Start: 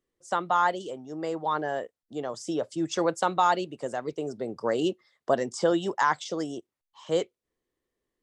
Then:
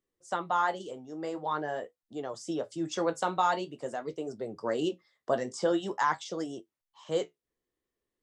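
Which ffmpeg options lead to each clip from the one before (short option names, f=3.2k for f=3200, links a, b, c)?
-af "flanger=delay=9.4:depth=7.8:regen=-51:speed=0.46:shape=triangular"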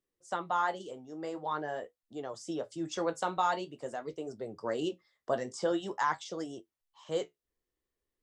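-af "asubboost=boost=2:cutoff=100,volume=-2.5dB"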